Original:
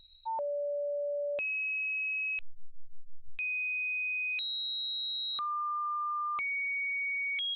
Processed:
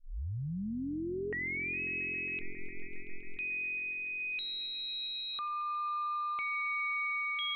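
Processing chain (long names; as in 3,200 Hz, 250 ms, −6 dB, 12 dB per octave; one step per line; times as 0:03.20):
turntable start at the beginning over 1.80 s
echo that builds up and dies away 136 ms, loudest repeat 5, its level −17.5 dB
level −3 dB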